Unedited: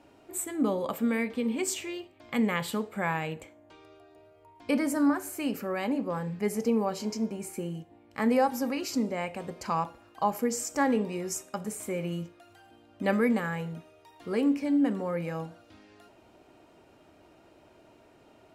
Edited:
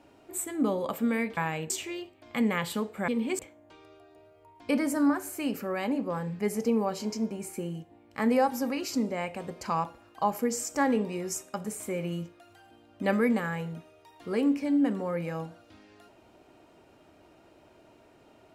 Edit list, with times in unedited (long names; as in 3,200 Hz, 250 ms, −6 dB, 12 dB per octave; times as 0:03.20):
0:01.37–0:01.68: swap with 0:03.06–0:03.39